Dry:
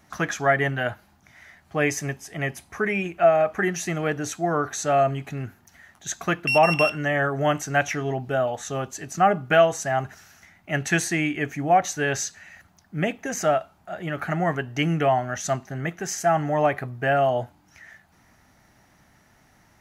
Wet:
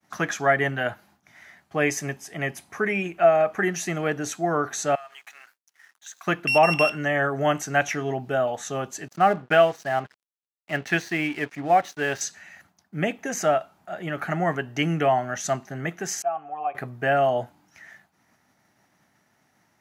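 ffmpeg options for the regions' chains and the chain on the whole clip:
-filter_complex "[0:a]asettb=1/sr,asplit=3[a][b][c];[a]atrim=end=4.954[d];[b]atrim=start=4.95:end=6.27,asetpts=PTS-STARTPTS,afade=t=in:d=0.004:c=qsin,afade=t=out:st=1.316:d=0.004:c=qsin,highpass=f=930:w=0.5412,highpass=f=930:w=1.3066,acompressor=threshold=-37dB:ratio=6:attack=3.2:release=140:knee=1:detection=peak,aeval=exprs='sgn(val(0))*max(abs(val(0))-0.00133,0)':c=same[e];[c]atrim=start=6.266[f];[d][e]acrossfade=d=0.004:c1=hsin:c2=qsin[g];[g][f]acrossfade=d=0.004:c1=qsin:c2=hsin,asettb=1/sr,asplit=3[h][i][j];[h]atrim=end=9.084[k];[i]atrim=start=9.08:end=12.21,asetpts=PTS-STARTPTS,afade=t=in:d=0.004:c=qsin,afade=t=out:st=3.126:d=0.004:c=qsin,lowpass=f=4.9k:w=0.5412,lowpass=f=4.9k:w=1.3066,asubboost=boost=6.5:cutoff=56,aeval=exprs='sgn(val(0))*max(abs(val(0))-0.00794,0)':c=same[l];[j]atrim=start=12.206[m];[k][l]acrossfade=d=0.004:c1=hsin:c2=qsin[n];[n][m]acrossfade=d=0.004:c1=qsin:c2=hsin,asettb=1/sr,asplit=3[o][p][q];[o]atrim=end=16.224[r];[p]atrim=start=16.22:end=16.75,asetpts=PTS-STARTPTS,afade=t=in:d=0.004:c=qsin,afade=t=out:st=0.526:d=0.004:c=qsin,asplit=3[s][t][u];[s]bandpass=f=730:t=q:w=8,volume=0dB[v];[t]bandpass=f=1.09k:t=q:w=8,volume=-6dB[w];[u]bandpass=f=2.44k:t=q:w=8,volume=-9dB[x];[v][w][x]amix=inputs=3:normalize=0,bandreject=f=610:w=5.6[y];[q]atrim=start=16.746[z];[r][y]acrossfade=d=0.004:c1=hsin:c2=qsin[aa];[aa][z]acrossfade=d=0.004:c1=qsin:c2=hsin,highpass=140,agate=range=-33dB:threshold=-53dB:ratio=3:detection=peak"

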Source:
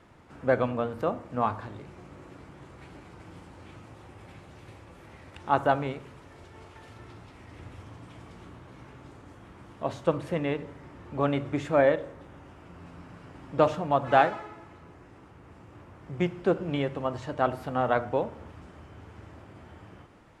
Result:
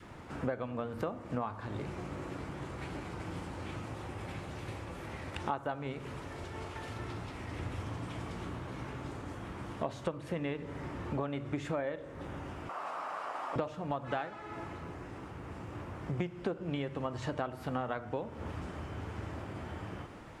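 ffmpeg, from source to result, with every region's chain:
-filter_complex "[0:a]asettb=1/sr,asplit=3[a][b][c];[a]atrim=end=12.694[d];[b]atrim=start=12.69:end=13.56,asetpts=PTS-STARTPTS,afade=t=in:d=0.004:c=qsin,afade=t=out:st=0.866:d=0.004:c=qsin,highpass=f=700:t=q:w=2.6,equalizer=f=1.2k:w=3.4:g=9[e];[c]atrim=start=13.556[f];[d][e]acrossfade=d=0.004:c1=hsin:c2=qsin[g];[g][f]acrossfade=d=0.004:c1=qsin:c2=hsin,adynamicequalizer=threshold=0.0112:dfrequency=650:dqfactor=1.2:tfrequency=650:tqfactor=1.2:attack=5:release=100:ratio=0.375:range=2.5:mode=cutabove:tftype=bell,acompressor=threshold=-38dB:ratio=16,volume=6.5dB"

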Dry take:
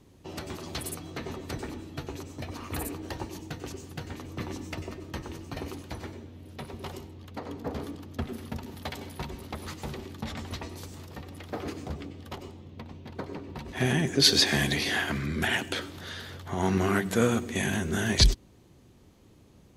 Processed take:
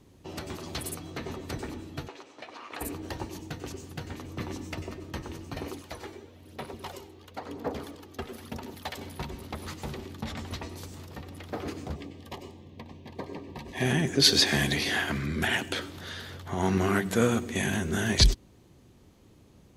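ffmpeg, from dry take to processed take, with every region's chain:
-filter_complex "[0:a]asettb=1/sr,asplit=3[a][b][c];[a]atrim=end=2.084[d];[b]atrim=start=2.08:end=2.81,asetpts=PTS-STARTPTS,afade=t=in:d=0.004:c=qsin,afade=t=out:st=0.726:d=0.004:c=qsin,acrusher=bits=4:mode=log:mix=0:aa=0.000001,highpass=550,lowpass=4k[e];[c]atrim=start=2.806[f];[d][e]acrossfade=d=0.004:c1=hsin:c2=qsin[g];[g][f]acrossfade=d=0.004:c1=qsin:c2=hsin,asettb=1/sr,asplit=3[h][i][j];[h]atrim=end=5.644[k];[i]atrim=start=5.64:end=8.98,asetpts=PTS-STARTPTS,afade=t=in:d=0.004:c=qsin,afade=t=out:st=3.336:d=0.004:c=qsin,bass=f=250:g=-9,treble=f=4k:g=1,aphaser=in_gain=1:out_gain=1:delay=2.6:decay=0.39:speed=1:type=sinusoidal[l];[j]atrim=start=8.976[m];[k][l]acrossfade=d=0.004:c1=hsin:c2=qsin[n];[n][m]acrossfade=d=0.004:c1=qsin:c2=hsin,asettb=1/sr,asplit=3[o][p][q];[o]atrim=end=11.964[r];[p]atrim=start=11.96:end=13.86,asetpts=PTS-STARTPTS,afade=t=in:d=0.004:c=qsin,afade=t=out:st=1.896:d=0.004:c=qsin,asuperstop=centerf=1400:order=20:qfactor=4.4,lowshelf=f=150:g=-5[s];[q]atrim=start=13.856[t];[r][s]acrossfade=d=0.004:c1=hsin:c2=qsin[u];[u][t]acrossfade=d=0.004:c1=qsin:c2=hsin"

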